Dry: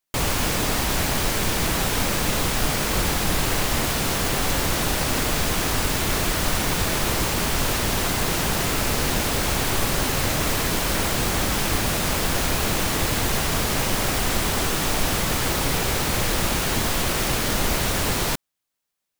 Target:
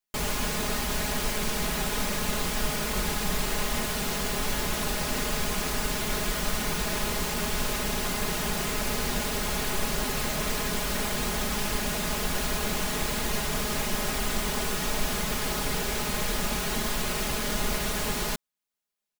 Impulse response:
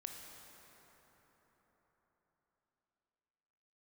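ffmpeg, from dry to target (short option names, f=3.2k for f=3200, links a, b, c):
-af "aecho=1:1:4.8:0.73,volume=-8dB"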